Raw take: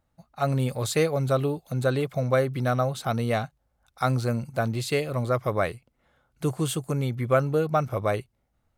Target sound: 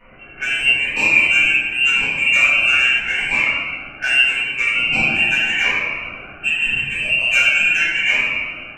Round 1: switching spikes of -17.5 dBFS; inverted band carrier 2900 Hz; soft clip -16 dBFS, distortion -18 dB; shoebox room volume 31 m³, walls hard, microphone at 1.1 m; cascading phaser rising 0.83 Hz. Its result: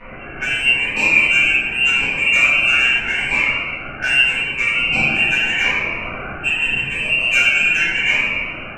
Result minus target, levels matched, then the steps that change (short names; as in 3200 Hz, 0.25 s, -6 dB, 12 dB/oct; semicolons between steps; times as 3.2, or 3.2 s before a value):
switching spikes: distortion +11 dB
change: switching spikes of -28.5 dBFS